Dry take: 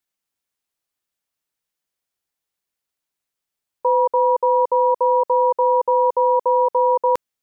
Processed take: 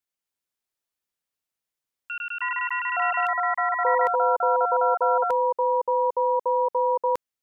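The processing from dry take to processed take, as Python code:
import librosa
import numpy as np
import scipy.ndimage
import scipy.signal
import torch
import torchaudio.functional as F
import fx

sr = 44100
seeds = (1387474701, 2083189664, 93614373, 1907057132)

y = fx.echo_pitch(x, sr, ms=246, semitones=6, count=3, db_per_echo=-3.0)
y = y * 10.0 ** (-6.0 / 20.0)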